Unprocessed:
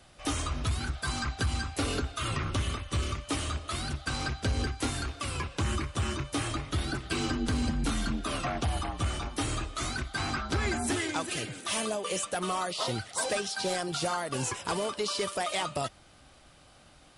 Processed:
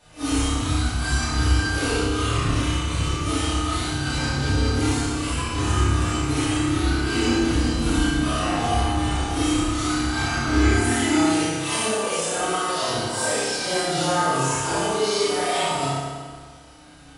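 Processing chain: phase randomisation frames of 200 ms; flutter echo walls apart 5.1 m, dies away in 0.39 s; FDN reverb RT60 1.7 s, low-frequency decay 0.9×, high-frequency decay 0.8×, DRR -6 dB

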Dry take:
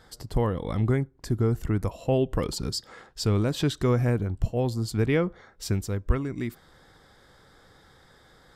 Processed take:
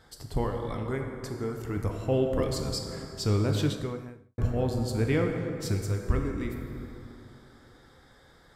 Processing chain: 0.44–1.77 s: bass shelf 240 Hz -11.5 dB; plate-style reverb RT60 2.9 s, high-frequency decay 0.5×, DRR 2 dB; 3.62–4.38 s: fade out quadratic; trim -3.5 dB

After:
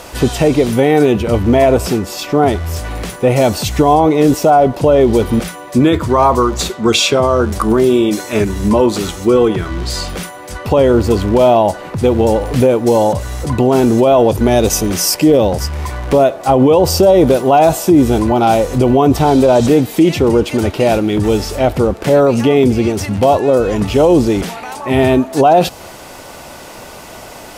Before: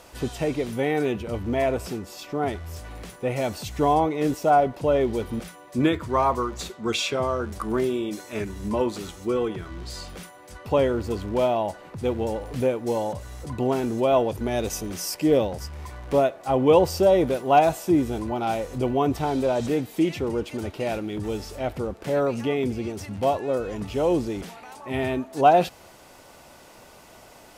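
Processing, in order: dynamic bell 2 kHz, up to -5 dB, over -40 dBFS, Q 1.2; loudness maximiser +17 dB; trim -1 dB

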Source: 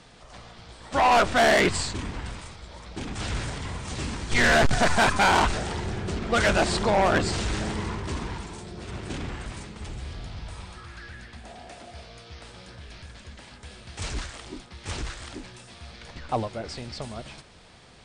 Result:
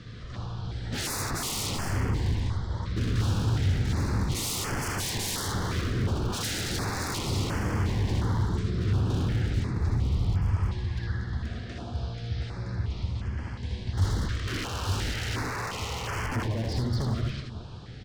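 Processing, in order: painted sound noise, 14.47–16.27 s, 400–3200 Hz -34 dBFS; in parallel at +2 dB: compression, threshold -32 dBFS, peak gain reduction 13.5 dB; on the sum: distance through air 170 m; on a send: multi-tap echo 62/63/79/181/371/422 ms -14/-6.5/-4.5/-19/-19/-14.5 dB; on the sum: wavefolder -24 dBFS; fifteen-band graphic EQ 100 Hz +11 dB, 630 Hz -8 dB, 2.5 kHz -5 dB; step-sequenced notch 2.8 Hz 860–3800 Hz

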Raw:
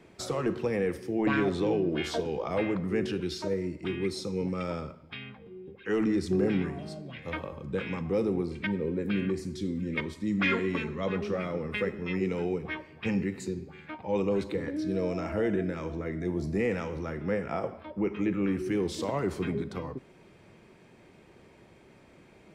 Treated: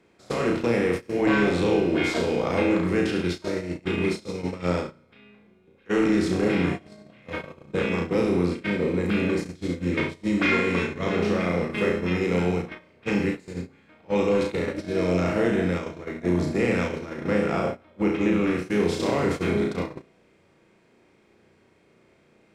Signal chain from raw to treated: spectral levelling over time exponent 0.6; flutter echo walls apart 5.8 m, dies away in 0.57 s; gate -25 dBFS, range -22 dB

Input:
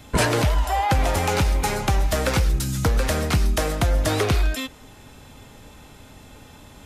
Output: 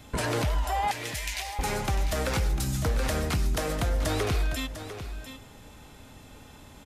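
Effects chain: 0.91–1.59 s: elliptic high-pass 1.8 kHz; peak limiter -15.5 dBFS, peak gain reduction 9.5 dB; on a send: delay 699 ms -11 dB; on the sum: trim -4 dB

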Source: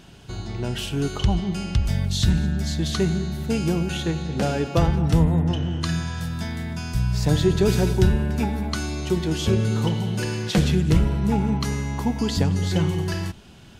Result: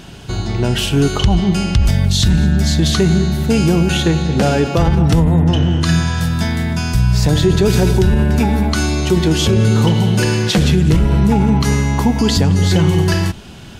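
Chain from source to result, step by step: loudness maximiser +15 dB; trim -3.5 dB

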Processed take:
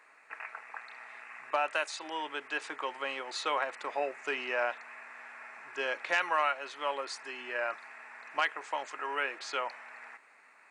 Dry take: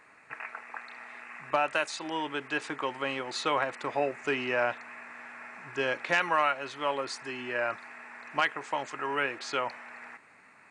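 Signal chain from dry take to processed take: high-pass 450 Hz 12 dB/octave; trim -2.5 dB

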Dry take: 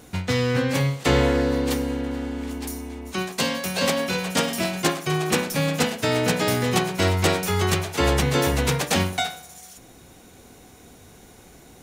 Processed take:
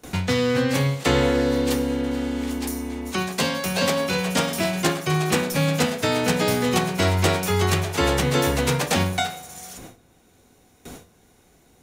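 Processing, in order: gate with hold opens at -36 dBFS; on a send at -10.5 dB: reverberation RT60 0.40 s, pre-delay 11 ms; on the sum: three bands compressed up and down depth 40%

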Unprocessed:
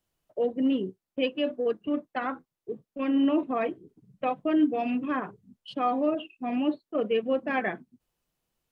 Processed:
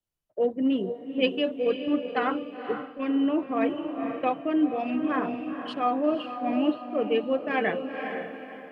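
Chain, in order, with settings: echo that smears into a reverb 491 ms, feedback 47%, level -7.5 dB; gain riding within 3 dB 0.5 s; three bands expanded up and down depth 40%; trim +1.5 dB

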